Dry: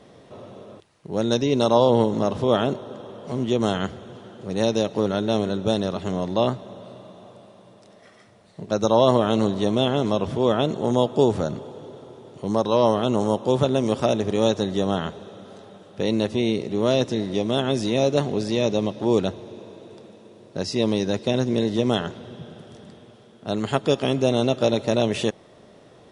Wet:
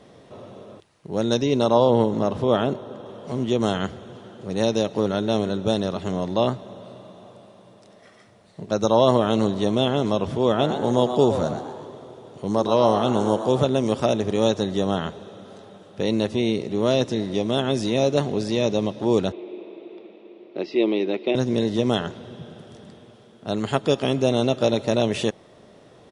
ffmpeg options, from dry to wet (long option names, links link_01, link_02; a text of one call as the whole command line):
ffmpeg -i in.wav -filter_complex "[0:a]asettb=1/sr,asplit=3[link_01][link_02][link_03];[link_01]atrim=end=1.574[link_04];[link_02]atrim=start=1.57:end=3.06,asetpts=PTS-STARTPTS,afade=type=in:duration=0.004:curve=qsin,afade=type=out:start_time=1.486:duration=0.004:curve=qsin,equalizer=frequency=7000:width=0.51:gain=-4.5[link_05];[link_03]atrim=start=3.056[link_06];[link_04][link_05]acrossfade=duration=0.004:curve1=hsin:curve2=qsin[link_07];[link_07][link_06]acrossfade=duration=0.004:curve1=qsin:curve2=hsin,asplit=3[link_08][link_09][link_10];[link_08]afade=type=out:start_time=10.58:duration=0.02[link_11];[link_09]asplit=6[link_12][link_13][link_14][link_15][link_16][link_17];[link_13]adelay=121,afreqshift=120,volume=-9dB[link_18];[link_14]adelay=242,afreqshift=240,volume=-15.7dB[link_19];[link_15]adelay=363,afreqshift=360,volume=-22.5dB[link_20];[link_16]adelay=484,afreqshift=480,volume=-29.2dB[link_21];[link_17]adelay=605,afreqshift=600,volume=-36dB[link_22];[link_12][link_18][link_19][link_20][link_21][link_22]amix=inputs=6:normalize=0,afade=type=in:start_time=10.58:duration=0.02,afade=type=out:start_time=13.61:duration=0.02[link_23];[link_10]afade=type=in:start_time=13.61:duration=0.02[link_24];[link_11][link_23][link_24]amix=inputs=3:normalize=0,asettb=1/sr,asplit=3[link_25][link_26][link_27];[link_25]atrim=end=19.324[link_28];[link_26]atrim=start=19.32:end=21.35,asetpts=PTS-STARTPTS,afade=type=in:duration=0.004:curve=qsin,afade=type=out:start_time=2.026:duration=0.004:curve=qsin,highpass=frequency=230:width=0.5412,highpass=frequency=230:width=1.3066,equalizer=frequency=240:width_type=q:width=4:gain=-5,equalizer=frequency=350:width_type=q:width=4:gain=9,equalizer=frequency=500:width_type=q:width=4:gain=-3,equalizer=frequency=980:width_type=q:width=4:gain=-4,equalizer=frequency=1600:width_type=q:width=4:gain=-9,equalizer=frequency=2300:width_type=q:width=4:gain=8,lowpass=frequency=3400:width=0.5412,lowpass=frequency=3400:width=1.3066[link_29];[link_27]atrim=start=21.346[link_30];[link_28][link_29]acrossfade=duration=0.004:curve1=hsin:curve2=qsin[link_31];[link_31][link_30]acrossfade=duration=0.004:curve1=qsin:curve2=hsin" out.wav